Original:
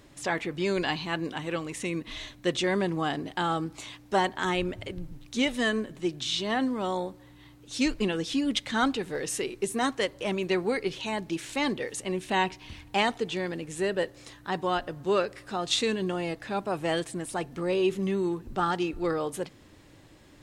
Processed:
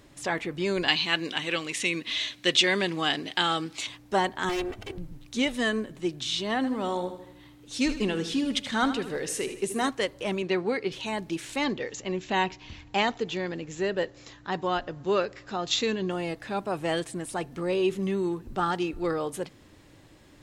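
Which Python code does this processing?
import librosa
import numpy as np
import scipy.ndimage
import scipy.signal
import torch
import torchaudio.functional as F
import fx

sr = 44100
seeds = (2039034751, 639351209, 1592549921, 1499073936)

y = fx.weighting(x, sr, curve='D', at=(0.88, 3.87))
y = fx.lower_of_two(y, sr, delay_ms=2.6, at=(4.49, 4.98))
y = fx.echo_feedback(y, sr, ms=78, feedback_pct=51, wet_db=-11.5, at=(6.56, 9.89))
y = fx.bandpass_edges(y, sr, low_hz=100.0, high_hz=5400.0, at=(10.42, 10.92))
y = fx.brickwall_lowpass(y, sr, high_hz=7700.0, at=(11.64, 16.11))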